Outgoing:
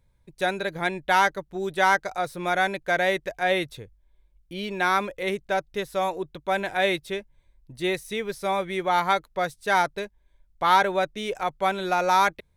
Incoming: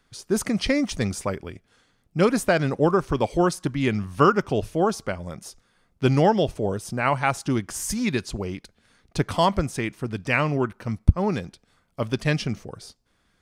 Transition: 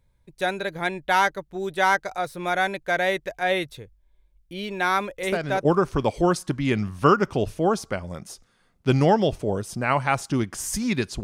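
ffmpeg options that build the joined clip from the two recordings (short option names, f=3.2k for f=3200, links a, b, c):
-filter_complex "[1:a]asplit=2[a][b];[0:a]apad=whole_dur=11.23,atrim=end=11.23,atrim=end=5.652[c];[b]atrim=start=2.808:end=8.39[d];[a]atrim=start=2.39:end=2.81,asetpts=PTS-STARTPTS,volume=-7.5dB,afade=t=in:d=0.004:c=hsin,afade=t=out:st=0.416:d=0.004:c=hsin,adelay=5230[e];[c][d]acrossfade=d=0.004:c1=hsin:c2=hsin[f];[f][e]amix=inputs=2:normalize=0"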